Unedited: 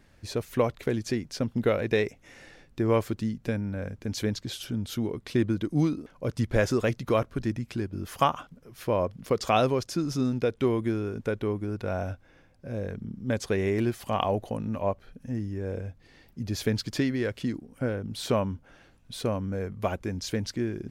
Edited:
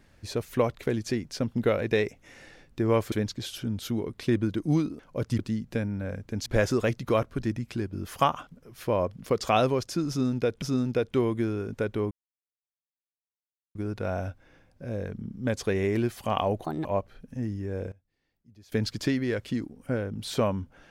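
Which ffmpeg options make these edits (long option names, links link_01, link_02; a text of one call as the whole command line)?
ffmpeg -i in.wav -filter_complex "[0:a]asplit=10[link_01][link_02][link_03][link_04][link_05][link_06][link_07][link_08][link_09][link_10];[link_01]atrim=end=3.122[link_11];[link_02]atrim=start=4.188:end=6.462[link_12];[link_03]atrim=start=3.118:end=4.192[link_13];[link_04]atrim=start=6.458:end=10.622[link_14];[link_05]atrim=start=10.088:end=11.58,asetpts=PTS-STARTPTS,afade=type=out:start_time=1.488:duration=0.004:curve=hsin,apad=pad_dur=1.64[link_15];[link_06]atrim=start=11.58:end=14.474,asetpts=PTS-STARTPTS,afade=type=in:duration=0.004:curve=hsin[link_16];[link_07]atrim=start=14.47:end=14.77,asetpts=PTS-STARTPTS,asetrate=63504,aresample=44100[link_17];[link_08]atrim=start=14.766:end=15.84,asetpts=PTS-STARTPTS,afade=type=out:start_time=0.884:duration=0.19:curve=log:silence=0.0749894[link_18];[link_09]atrim=start=15.84:end=16.64,asetpts=PTS-STARTPTS,volume=-22.5dB[link_19];[link_10]atrim=start=16.64,asetpts=PTS-STARTPTS,afade=type=in:duration=0.19:curve=log:silence=0.0749894[link_20];[link_11][link_12]acrossfade=duration=0.004:curve1=hsin:curve2=hsin[link_21];[link_21][link_13]acrossfade=duration=0.004:curve1=hsin:curve2=hsin[link_22];[link_22][link_14]acrossfade=duration=0.004:curve1=hsin:curve2=hsin[link_23];[link_15][link_16]concat=n=2:v=0:a=1[link_24];[link_23][link_24]acrossfade=duration=0.004:curve1=hsin:curve2=hsin[link_25];[link_25][link_17]acrossfade=duration=0.004:curve1=hsin:curve2=hsin[link_26];[link_18][link_19][link_20]concat=n=3:v=0:a=1[link_27];[link_26][link_27]acrossfade=duration=0.004:curve1=hsin:curve2=hsin" out.wav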